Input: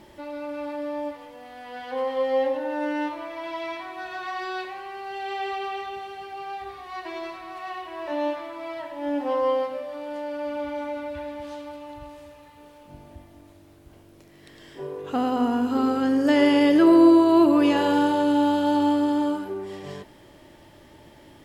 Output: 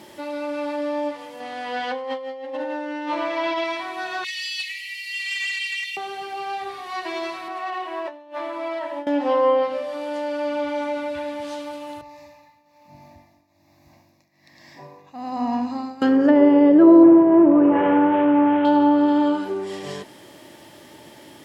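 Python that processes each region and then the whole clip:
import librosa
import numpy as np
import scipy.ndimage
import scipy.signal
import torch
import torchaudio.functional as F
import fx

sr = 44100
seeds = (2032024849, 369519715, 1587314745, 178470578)

y = fx.chain(x, sr, fx.over_compress(threshold_db=-33.0, ratio=-1.0),
    fx.air_absorb(metres=59.0), at=(1.4, 3.64))
y = fx.chain(y, sr, fx.cheby1_highpass(hz=1900.0, order=10),
    fx.comb(ms=4.7, depth=0.9),
    fx.leveller(passes=1), at=(4.24, 5.97))
y = fx.chain(y, sr, fx.highpass(hz=280.0, slope=12),
    fx.high_shelf(hz=2900.0, db=-11.5),
    fx.over_compress(threshold_db=-35.0, ratio=-0.5), at=(7.48, 9.07))
y = fx.chain(y, sr, fx.high_shelf(hz=5400.0, db=-6.0),
    fx.tremolo_shape(shape='triangle', hz=1.2, depth_pct=85),
    fx.fixed_phaser(hz=2100.0, stages=8), at=(12.01, 16.02))
y = fx.chain(y, sr, fx.cvsd(bps=16000),
    fx.lowpass(hz=2100.0, slope=6), at=(17.03, 18.65))
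y = fx.env_lowpass_down(y, sr, base_hz=860.0, full_db=-15.0)
y = scipy.signal.sosfilt(scipy.signal.butter(2, 150.0, 'highpass', fs=sr, output='sos'), y)
y = fx.high_shelf(y, sr, hz=3800.0, db=7.5)
y = y * 10.0 ** (5.0 / 20.0)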